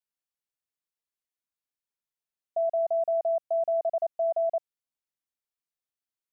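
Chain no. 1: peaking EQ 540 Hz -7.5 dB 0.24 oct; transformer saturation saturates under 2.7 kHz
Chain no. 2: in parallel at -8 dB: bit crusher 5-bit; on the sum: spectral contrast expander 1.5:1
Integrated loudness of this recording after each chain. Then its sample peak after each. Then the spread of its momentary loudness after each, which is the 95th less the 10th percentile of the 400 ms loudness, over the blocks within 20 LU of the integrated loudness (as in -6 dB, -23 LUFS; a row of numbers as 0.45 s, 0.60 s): -34.0 LUFS, -26.5 LUFS; -23.0 dBFS, -19.5 dBFS; 4 LU, 5 LU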